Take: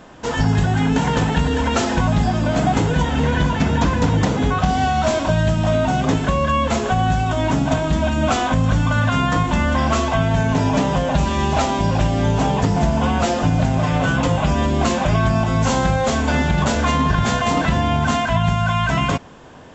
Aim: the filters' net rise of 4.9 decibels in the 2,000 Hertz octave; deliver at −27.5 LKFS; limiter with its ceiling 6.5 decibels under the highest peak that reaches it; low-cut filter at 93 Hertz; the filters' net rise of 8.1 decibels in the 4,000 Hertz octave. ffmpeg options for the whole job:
ffmpeg -i in.wav -af "highpass=93,equalizer=frequency=2000:width_type=o:gain=4.5,equalizer=frequency=4000:width_type=o:gain=9,volume=-9dB,alimiter=limit=-18dB:level=0:latency=1" out.wav

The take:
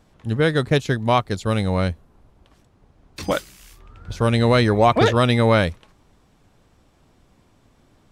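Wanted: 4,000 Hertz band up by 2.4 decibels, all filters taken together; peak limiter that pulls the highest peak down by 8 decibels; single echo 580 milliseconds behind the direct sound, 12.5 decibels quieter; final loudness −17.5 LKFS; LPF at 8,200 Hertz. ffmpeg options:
ffmpeg -i in.wav -af "lowpass=8200,equalizer=frequency=4000:width_type=o:gain=3,alimiter=limit=-10.5dB:level=0:latency=1,aecho=1:1:580:0.237,volume=6dB" out.wav

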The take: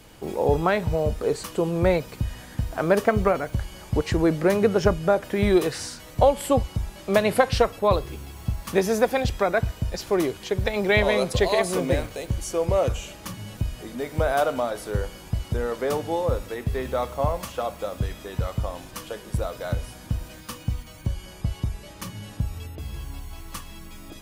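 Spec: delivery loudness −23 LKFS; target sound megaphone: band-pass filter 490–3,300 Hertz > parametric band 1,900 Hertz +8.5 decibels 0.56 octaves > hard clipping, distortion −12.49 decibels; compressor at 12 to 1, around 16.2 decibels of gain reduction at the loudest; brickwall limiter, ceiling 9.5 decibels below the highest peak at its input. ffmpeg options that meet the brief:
ffmpeg -i in.wav -af "acompressor=threshold=-30dB:ratio=12,alimiter=level_in=2dB:limit=-24dB:level=0:latency=1,volume=-2dB,highpass=490,lowpass=3300,equalizer=frequency=1900:width_type=o:width=0.56:gain=8.5,asoftclip=type=hard:threshold=-34.5dB,volume=19dB" out.wav

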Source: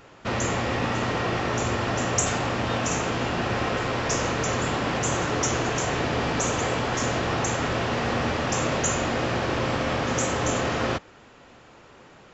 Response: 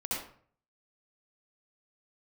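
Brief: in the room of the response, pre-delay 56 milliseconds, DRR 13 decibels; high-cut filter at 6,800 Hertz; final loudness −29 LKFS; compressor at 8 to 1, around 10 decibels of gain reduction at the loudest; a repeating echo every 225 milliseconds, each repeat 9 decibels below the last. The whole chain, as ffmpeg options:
-filter_complex "[0:a]lowpass=6800,acompressor=threshold=-32dB:ratio=8,aecho=1:1:225|450|675|900:0.355|0.124|0.0435|0.0152,asplit=2[link_01][link_02];[1:a]atrim=start_sample=2205,adelay=56[link_03];[link_02][link_03]afir=irnorm=-1:irlink=0,volume=-17.5dB[link_04];[link_01][link_04]amix=inputs=2:normalize=0,volume=5dB"

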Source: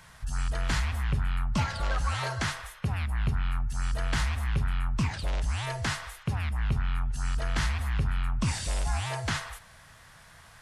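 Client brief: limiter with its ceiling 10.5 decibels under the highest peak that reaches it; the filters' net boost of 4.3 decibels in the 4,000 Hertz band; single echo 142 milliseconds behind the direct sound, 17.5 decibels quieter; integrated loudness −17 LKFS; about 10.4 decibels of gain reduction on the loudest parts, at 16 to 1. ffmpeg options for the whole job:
ffmpeg -i in.wav -af "equalizer=frequency=4000:width_type=o:gain=5.5,acompressor=threshold=-33dB:ratio=16,alimiter=level_in=6.5dB:limit=-24dB:level=0:latency=1,volume=-6.5dB,aecho=1:1:142:0.133,volume=23.5dB" out.wav

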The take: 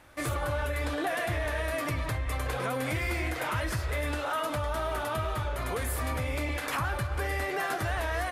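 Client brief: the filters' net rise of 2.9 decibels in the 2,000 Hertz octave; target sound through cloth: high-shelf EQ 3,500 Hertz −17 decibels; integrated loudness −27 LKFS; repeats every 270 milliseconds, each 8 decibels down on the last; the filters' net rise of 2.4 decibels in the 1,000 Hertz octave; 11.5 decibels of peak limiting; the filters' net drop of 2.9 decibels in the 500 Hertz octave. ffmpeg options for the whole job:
ffmpeg -i in.wav -af "equalizer=frequency=500:width_type=o:gain=-5.5,equalizer=frequency=1000:width_type=o:gain=4.5,equalizer=frequency=2000:width_type=o:gain=7,alimiter=level_in=3dB:limit=-24dB:level=0:latency=1,volume=-3dB,highshelf=frequency=3500:gain=-17,aecho=1:1:270|540|810|1080|1350:0.398|0.159|0.0637|0.0255|0.0102,volume=9.5dB" out.wav

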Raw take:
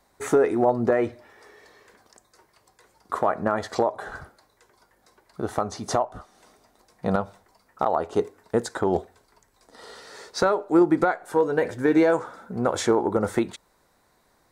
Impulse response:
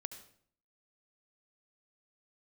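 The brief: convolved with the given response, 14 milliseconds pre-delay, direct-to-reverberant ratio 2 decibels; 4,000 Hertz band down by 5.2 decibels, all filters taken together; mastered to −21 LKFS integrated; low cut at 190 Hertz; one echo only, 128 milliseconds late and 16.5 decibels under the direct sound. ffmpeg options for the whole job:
-filter_complex "[0:a]highpass=190,equalizer=frequency=4000:width_type=o:gain=-6.5,aecho=1:1:128:0.15,asplit=2[link_01][link_02];[1:a]atrim=start_sample=2205,adelay=14[link_03];[link_02][link_03]afir=irnorm=-1:irlink=0,volume=1dB[link_04];[link_01][link_04]amix=inputs=2:normalize=0,volume=1.5dB"

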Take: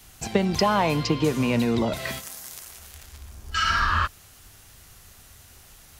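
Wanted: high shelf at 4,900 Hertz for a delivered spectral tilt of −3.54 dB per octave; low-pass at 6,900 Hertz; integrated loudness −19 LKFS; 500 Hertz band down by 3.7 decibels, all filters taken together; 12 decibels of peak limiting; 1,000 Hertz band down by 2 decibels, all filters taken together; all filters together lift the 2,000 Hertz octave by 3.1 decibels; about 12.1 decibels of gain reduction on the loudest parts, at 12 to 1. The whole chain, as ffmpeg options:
ffmpeg -i in.wav -af "lowpass=6900,equalizer=frequency=500:width_type=o:gain=-4,equalizer=frequency=1000:width_type=o:gain=-4,equalizer=frequency=2000:width_type=o:gain=4.5,highshelf=frequency=4900:gain=9,acompressor=threshold=-30dB:ratio=12,volume=20.5dB,alimiter=limit=-8dB:level=0:latency=1" out.wav

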